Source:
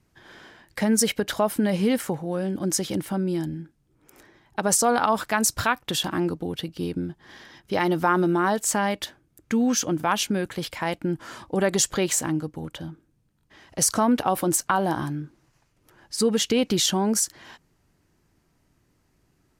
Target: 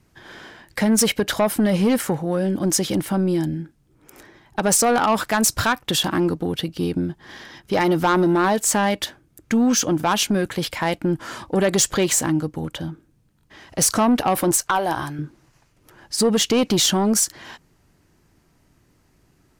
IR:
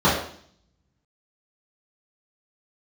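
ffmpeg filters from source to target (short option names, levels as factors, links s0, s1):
-filter_complex "[0:a]asettb=1/sr,asplit=3[s0][s1][s2];[s0]atrim=end=14.514[s3];[s1]atrim=start=14.51:end=15.19,asetpts=PTS-STARTPTS,afade=t=in:d=0.004:c=qsin,afade=t=out:st=0.676:d=0.004:c=qsin,equalizer=f=210:t=o:w=1.3:g=-14.5[s4];[s2]atrim=start=15.186[s5];[s3][s4]acrossfade=d=0.004:c1=hsin:c2=qsin[s6];[s6][s5]acrossfade=d=0.004:c1=qsin:c2=hsin,aeval=exprs='(tanh(7.94*val(0)+0.05)-tanh(0.05))/7.94':c=same,volume=2.11"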